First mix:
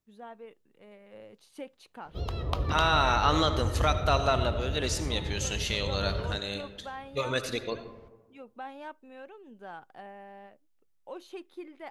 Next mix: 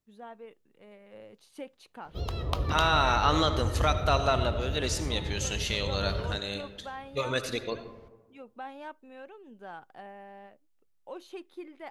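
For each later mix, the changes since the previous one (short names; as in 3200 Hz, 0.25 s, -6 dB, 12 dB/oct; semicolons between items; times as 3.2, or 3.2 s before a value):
background: add high shelf 5100 Hz +6 dB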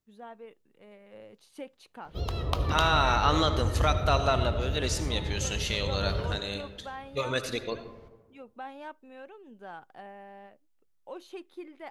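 background: send +7.0 dB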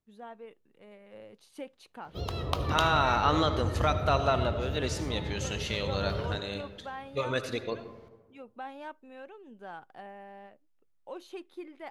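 second voice: add high shelf 3600 Hz -8 dB; background: add HPF 82 Hz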